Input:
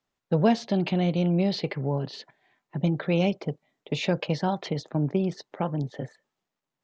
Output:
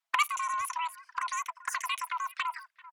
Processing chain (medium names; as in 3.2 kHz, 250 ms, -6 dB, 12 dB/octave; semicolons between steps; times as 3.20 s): level held to a coarse grid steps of 10 dB; frequency shift +280 Hz; speed mistake 33 rpm record played at 78 rpm; speakerphone echo 390 ms, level -21 dB; touch-sensitive flanger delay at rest 6.1 ms, full sweep at -29.5 dBFS; dynamic bell 1.5 kHz, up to +5 dB, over -50 dBFS, Q 5.4; trim +4.5 dB